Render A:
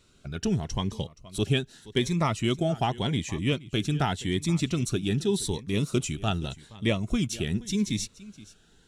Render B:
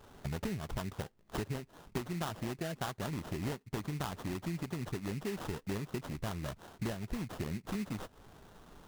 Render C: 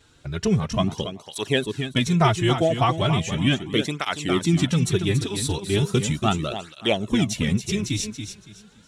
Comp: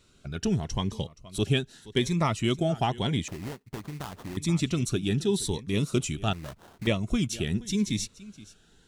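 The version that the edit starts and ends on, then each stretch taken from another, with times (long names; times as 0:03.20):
A
0:03.28–0:04.37: punch in from B
0:06.33–0:06.87: punch in from B
not used: C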